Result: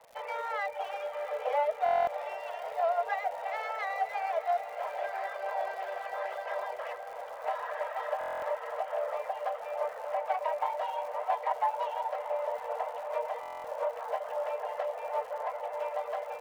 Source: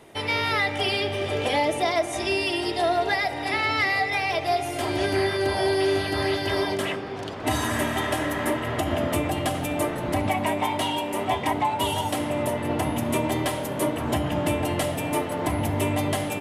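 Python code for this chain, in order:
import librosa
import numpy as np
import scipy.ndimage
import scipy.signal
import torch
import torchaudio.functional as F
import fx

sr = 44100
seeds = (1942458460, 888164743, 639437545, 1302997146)

p1 = fx.tracing_dist(x, sr, depth_ms=0.29)
p2 = scipy.signal.sosfilt(scipy.signal.butter(2, 1200.0, 'lowpass', fs=sr, output='sos'), p1)
p3 = fx.dereverb_blind(p2, sr, rt60_s=0.62)
p4 = scipy.signal.sosfilt(scipy.signal.cheby1(8, 1.0, 470.0, 'highpass', fs=sr, output='sos'), p3)
p5 = fx.dmg_crackle(p4, sr, seeds[0], per_s=220.0, level_db=-42.0)
p6 = p5 + fx.echo_diffused(p5, sr, ms=689, feedback_pct=71, wet_db=-13, dry=0)
p7 = fx.buffer_glitch(p6, sr, at_s=(1.84, 8.19, 13.41), block=1024, repeats=9)
y = F.gain(torch.from_numpy(p7), -2.5).numpy()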